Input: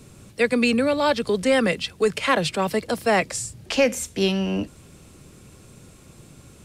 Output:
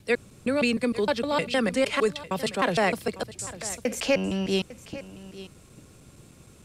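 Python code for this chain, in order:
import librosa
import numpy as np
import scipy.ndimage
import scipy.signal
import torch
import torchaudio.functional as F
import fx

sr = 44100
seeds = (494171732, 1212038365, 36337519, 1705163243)

p1 = fx.block_reorder(x, sr, ms=154.0, group=3)
p2 = p1 + fx.echo_single(p1, sr, ms=851, db=-16.5, dry=0)
y = p2 * librosa.db_to_amplitude(-4.0)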